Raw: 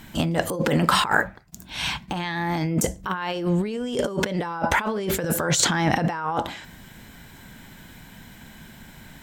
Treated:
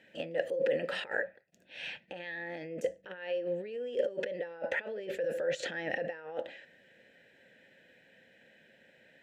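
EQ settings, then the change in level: vowel filter e; HPF 60 Hz; 0.0 dB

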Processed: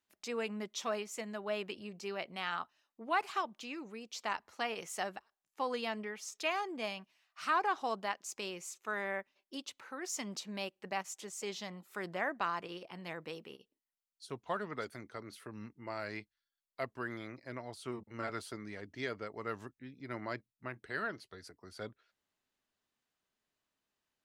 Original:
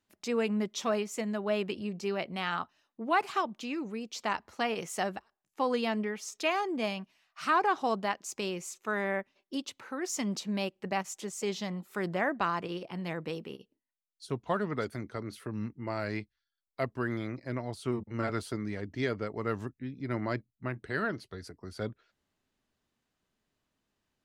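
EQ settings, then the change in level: low shelf 360 Hz -10.5 dB; -3.5 dB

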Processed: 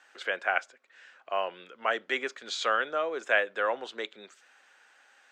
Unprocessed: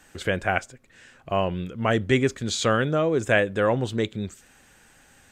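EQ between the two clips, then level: HPF 220 Hz 24 dB/oct; three-band isolator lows -22 dB, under 500 Hz, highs -19 dB, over 5800 Hz; bell 1400 Hz +3.5 dB 0.49 oct; -3.5 dB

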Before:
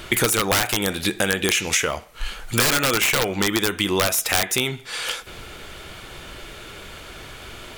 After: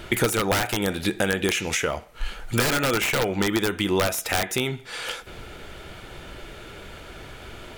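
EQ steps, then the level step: high shelf 2100 Hz -7.5 dB; notch 1100 Hz, Q 12; 0.0 dB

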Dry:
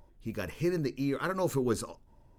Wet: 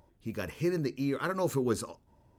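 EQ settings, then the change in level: HPF 62 Hz; 0.0 dB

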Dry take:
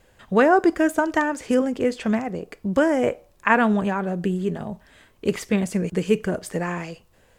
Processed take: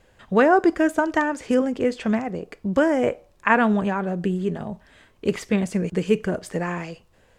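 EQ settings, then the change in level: high shelf 11000 Hz -11.5 dB; 0.0 dB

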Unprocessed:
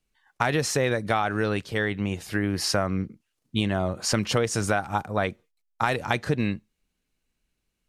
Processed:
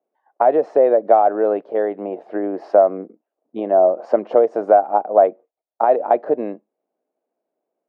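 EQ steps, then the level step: HPF 310 Hz 24 dB/oct; synth low-pass 660 Hz, resonance Q 4.1; +5.5 dB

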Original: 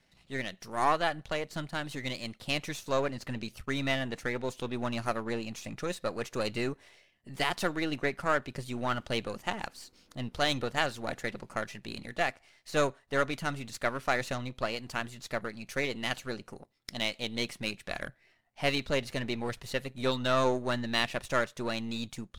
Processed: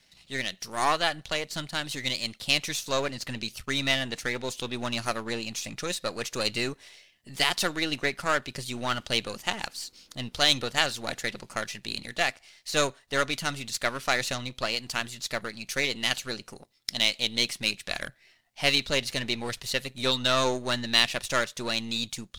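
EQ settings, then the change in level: bell 4100 Hz +8 dB 2 oct; high shelf 5500 Hz +9.5 dB; 0.0 dB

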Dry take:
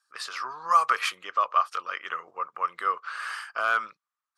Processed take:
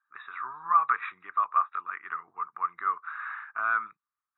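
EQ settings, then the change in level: brick-wall FIR low-pass 3900 Hz; fixed phaser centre 1300 Hz, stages 4; -1.5 dB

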